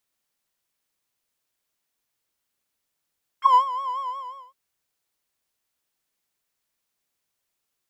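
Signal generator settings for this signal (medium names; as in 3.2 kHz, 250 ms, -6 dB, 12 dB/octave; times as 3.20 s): synth patch with vibrato C6, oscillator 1 square, oscillator 2 level -10 dB, sub -24 dB, noise -27 dB, filter bandpass, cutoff 630 Hz, Q 6.9, filter envelope 2 oct, filter decay 0.05 s, filter sustain 10%, attack 121 ms, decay 0.11 s, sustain -14 dB, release 0.53 s, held 0.58 s, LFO 5.6 Hz, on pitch 97 cents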